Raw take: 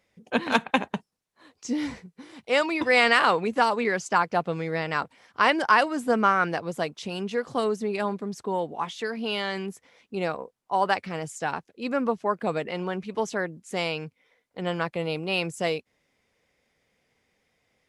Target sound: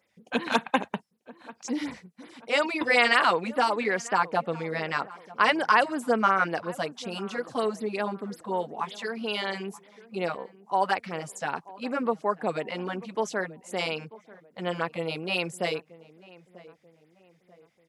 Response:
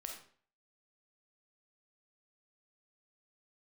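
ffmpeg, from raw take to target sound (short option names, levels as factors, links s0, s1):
-filter_complex "[0:a]highpass=f=210:p=1,asplit=2[s0][s1];[s1]adelay=940,lowpass=f=1300:p=1,volume=0.112,asplit=2[s2][s3];[s3]adelay=940,lowpass=f=1300:p=1,volume=0.44,asplit=2[s4][s5];[s5]adelay=940,lowpass=f=1300:p=1,volume=0.44[s6];[s2][s4][s6]amix=inputs=3:normalize=0[s7];[s0][s7]amix=inputs=2:normalize=0,afftfilt=real='re*(1-between(b*sr/1024,330*pow(7600/330,0.5+0.5*sin(2*PI*5.4*pts/sr))/1.41,330*pow(7600/330,0.5+0.5*sin(2*PI*5.4*pts/sr))*1.41))':imag='im*(1-between(b*sr/1024,330*pow(7600/330,0.5+0.5*sin(2*PI*5.4*pts/sr))/1.41,330*pow(7600/330,0.5+0.5*sin(2*PI*5.4*pts/sr))*1.41))':win_size=1024:overlap=0.75"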